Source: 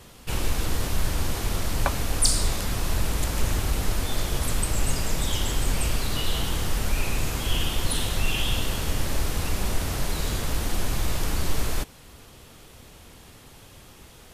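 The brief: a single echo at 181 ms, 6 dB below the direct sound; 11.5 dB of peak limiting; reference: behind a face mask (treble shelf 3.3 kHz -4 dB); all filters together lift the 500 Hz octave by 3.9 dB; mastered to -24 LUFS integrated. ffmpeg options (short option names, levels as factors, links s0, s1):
-af "equalizer=f=500:t=o:g=5,alimiter=limit=0.15:level=0:latency=1,highshelf=f=3300:g=-4,aecho=1:1:181:0.501,volume=1.78"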